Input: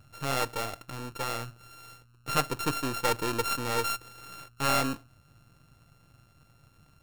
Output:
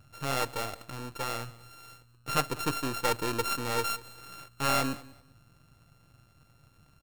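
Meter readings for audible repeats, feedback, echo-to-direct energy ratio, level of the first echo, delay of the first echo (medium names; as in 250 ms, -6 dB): 2, 23%, -20.5 dB, -20.5 dB, 194 ms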